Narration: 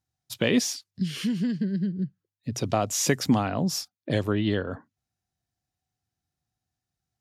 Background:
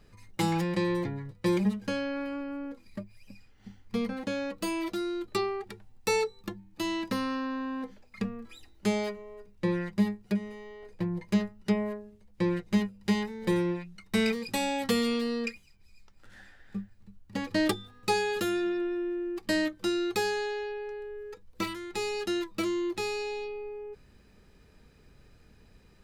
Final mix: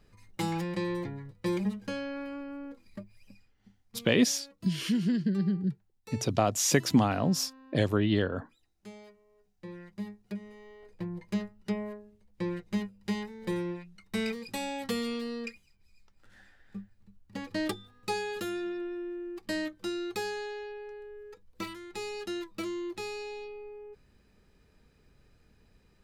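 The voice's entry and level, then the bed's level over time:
3.65 s, -1.0 dB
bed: 3.26 s -4 dB
4.07 s -20 dB
9.25 s -20 dB
10.7 s -5.5 dB

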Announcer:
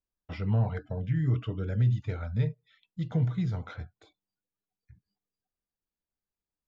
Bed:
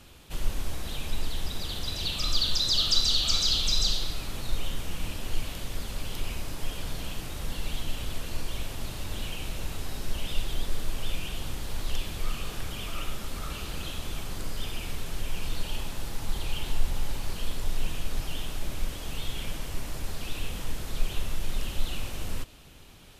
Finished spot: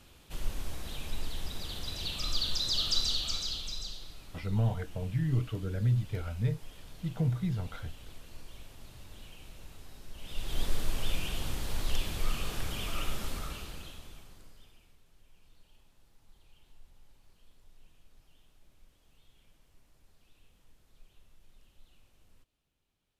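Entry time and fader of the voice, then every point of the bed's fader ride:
4.05 s, -2.5 dB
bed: 3.04 s -5.5 dB
3.91 s -15.5 dB
10.13 s -15.5 dB
10.61 s -0.5 dB
13.28 s -0.5 dB
14.99 s -30.5 dB

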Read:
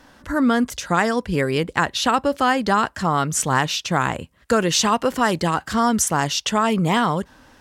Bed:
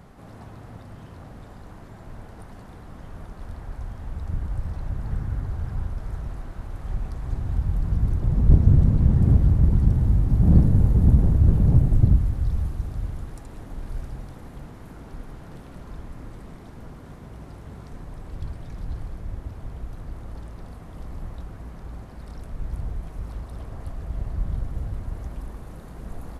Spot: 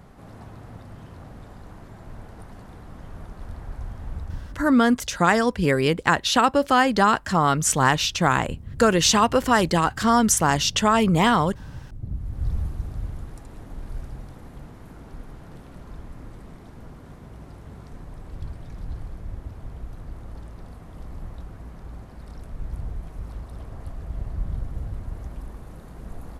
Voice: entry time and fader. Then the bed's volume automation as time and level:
4.30 s, +0.5 dB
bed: 4.19 s 0 dB
4.85 s -22 dB
11.91 s -22 dB
12.46 s -1.5 dB

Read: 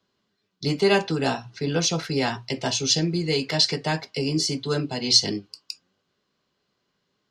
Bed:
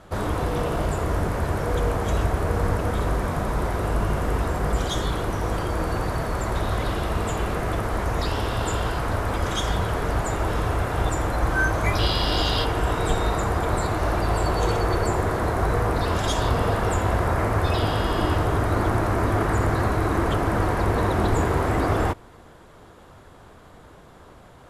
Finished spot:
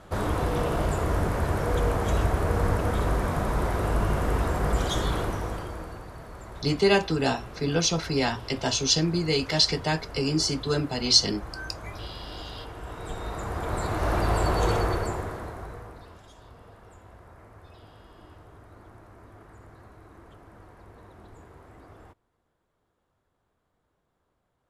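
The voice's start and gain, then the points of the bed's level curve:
6.00 s, -1.0 dB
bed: 5.2 s -1.5 dB
6.05 s -16.5 dB
12.79 s -16.5 dB
14.16 s -1.5 dB
14.78 s -1.5 dB
16.29 s -28 dB

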